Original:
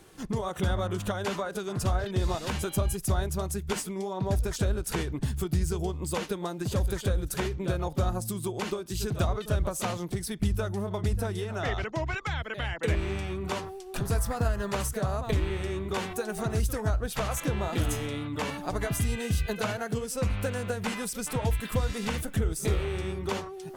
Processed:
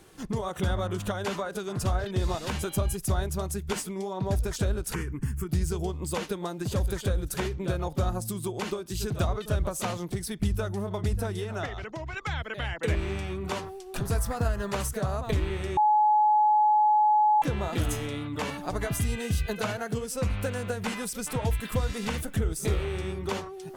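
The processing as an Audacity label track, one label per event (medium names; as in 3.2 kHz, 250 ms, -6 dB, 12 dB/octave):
4.940000	5.490000	static phaser centre 1.6 kHz, stages 4
11.650000	12.170000	compression 4:1, threshold -33 dBFS
15.770000	17.420000	bleep 848 Hz -18 dBFS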